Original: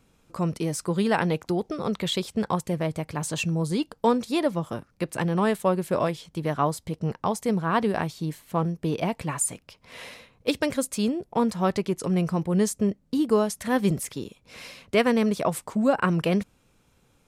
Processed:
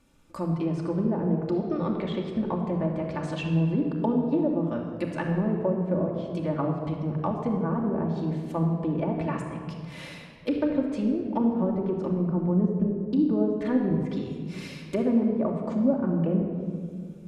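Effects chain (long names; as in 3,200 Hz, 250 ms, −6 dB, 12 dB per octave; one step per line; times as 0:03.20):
treble cut that deepens with the level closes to 470 Hz, closed at −20 dBFS
rectangular room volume 3,500 cubic metres, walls mixed, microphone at 2.5 metres
level −3.5 dB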